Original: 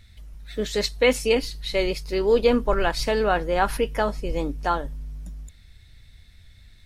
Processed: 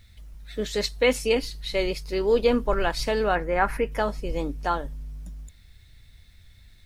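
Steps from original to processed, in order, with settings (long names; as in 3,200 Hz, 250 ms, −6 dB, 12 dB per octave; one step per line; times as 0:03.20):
0:03.35–0:03.92: high shelf with overshoot 2,700 Hz −7 dB, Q 3
bit reduction 11 bits
level −2 dB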